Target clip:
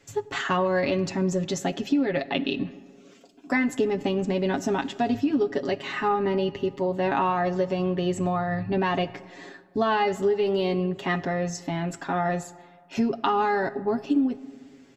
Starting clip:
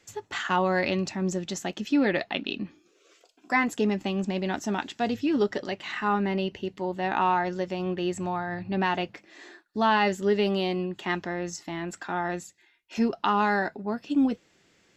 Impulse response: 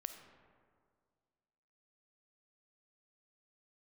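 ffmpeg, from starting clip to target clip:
-filter_complex "[0:a]tiltshelf=f=700:g=4,aecho=1:1:7.3:0.73,acompressor=threshold=0.0708:ratio=10,asplit=2[s0][s1];[1:a]atrim=start_sample=2205[s2];[s1][s2]afir=irnorm=-1:irlink=0,volume=0.708[s3];[s0][s3]amix=inputs=2:normalize=0"

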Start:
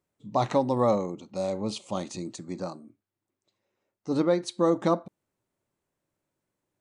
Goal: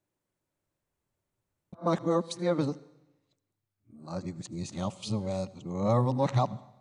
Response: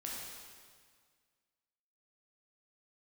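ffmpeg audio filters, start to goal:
-filter_complex "[0:a]areverse,asubboost=boost=6:cutoff=130,asplit=2[s0][s1];[1:a]atrim=start_sample=2205,asetrate=83790,aresample=44100,adelay=76[s2];[s1][s2]afir=irnorm=-1:irlink=0,volume=0.2[s3];[s0][s3]amix=inputs=2:normalize=0,volume=0.75"

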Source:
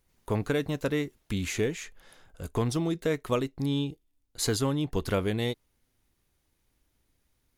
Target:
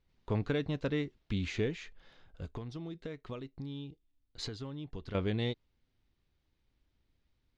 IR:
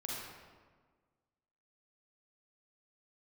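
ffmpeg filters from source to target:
-filter_complex "[0:a]lowpass=f=4300:w=0.5412,lowpass=f=4300:w=1.3066,lowshelf=f=310:g=6,asettb=1/sr,asplit=3[s0][s1][s2];[s0]atrim=end=2.444[s3];[s1]atrim=start=2.44:end=5.15,asetpts=PTS-STARTPTS,afade=t=in:d=0.004:c=qsin,afade=t=out:st=2.706:d=0.004:c=qsin,acompressor=threshold=0.0224:ratio=4[s4];[s2]atrim=start=5.146[s5];[s3][s4]acrossfade=d=0.004:c1=hsin:c2=qsin[s6];[s6][s5]acrossfade=d=0.004:c1=qsin:c2=hsin,crystalizer=i=2:c=0,volume=0.422"

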